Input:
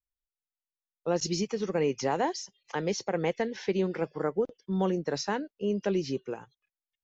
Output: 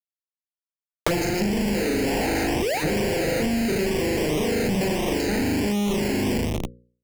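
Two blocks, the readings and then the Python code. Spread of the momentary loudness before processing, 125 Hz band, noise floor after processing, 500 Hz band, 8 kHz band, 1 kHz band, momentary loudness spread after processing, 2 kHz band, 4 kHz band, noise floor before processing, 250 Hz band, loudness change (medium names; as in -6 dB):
6 LU, +8.5 dB, under -85 dBFS, +5.0 dB, no reading, +4.0 dB, 2 LU, +11.5 dB, +9.0 dB, under -85 dBFS, +9.0 dB, +7.0 dB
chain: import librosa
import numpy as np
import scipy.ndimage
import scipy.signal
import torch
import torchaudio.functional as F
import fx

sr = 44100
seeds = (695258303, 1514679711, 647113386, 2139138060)

p1 = fx.dynamic_eq(x, sr, hz=1000.0, q=2.5, threshold_db=-44.0, ratio=4.0, max_db=4)
p2 = p1 + fx.room_flutter(p1, sr, wall_m=6.7, rt60_s=1.4, dry=0)
p3 = fx.spec_paint(p2, sr, seeds[0], shape='rise', start_s=2.62, length_s=0.22, low_hz=360.0, high_hz=1200.0, level_db=-21.0)
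p4 = fx.volume_shaper(p3, sr, bpm=123, per_beat=1, depth_db=-4, release_ms=194.0, shape='slow start')
p5 = fx.low_shelf_res(p4, sr, hz=150.0, db=-13.5, q=3.0)
p6 = fx.echo_feedback(p5, sr, ms=120, feedback_pct=51, wet_db=-21.0)
p7 = fx.leveller(p6, sr, passes=3)
p8 = fx.schmitt(p7, sr, flips_db=-21.5)
p9 = fx.env_flanger(p8, sr, rest_ms=6.8, full_db=-14.5)
p10 = fx.hum_notches(p9, sr, base_hz=60, count=9)
p11 = fx.band_squash(p10, sr, depth_pct=100)
y = F.gain(torch.from_numpy(p11), -5.0).numpy()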